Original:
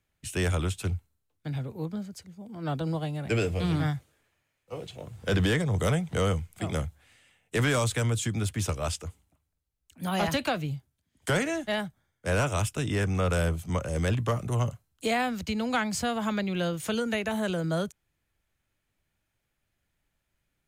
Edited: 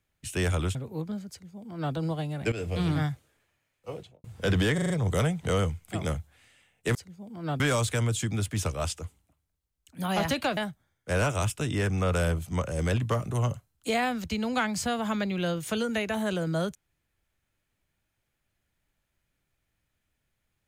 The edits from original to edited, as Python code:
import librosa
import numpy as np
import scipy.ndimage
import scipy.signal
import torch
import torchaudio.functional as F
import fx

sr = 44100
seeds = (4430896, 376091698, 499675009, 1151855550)

y = fx.studio_fade_out(x, sr, start_s=4.74, length_s=0.34)
y = fx.edit(y, sr, fx.cut(start_s=0.75, length_s=0.84),
    fx.duplicate(start_s=2.14, length_s=0.65, to_s=7.63),
    fx.fade_in_from(start_s=3.36, length_s=0.31, curve='qsin', floor_db=-16.0),
    fx.stutter(start_s=5.58, slice_s=0.04, count=5),
    fx.cut(start_s=10.6, length_s=1.14), tone=tone)